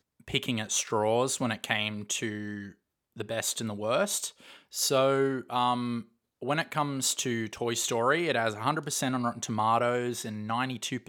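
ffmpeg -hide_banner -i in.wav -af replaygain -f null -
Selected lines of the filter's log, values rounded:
track_gain = +10.1 dB
track_peak = 0.276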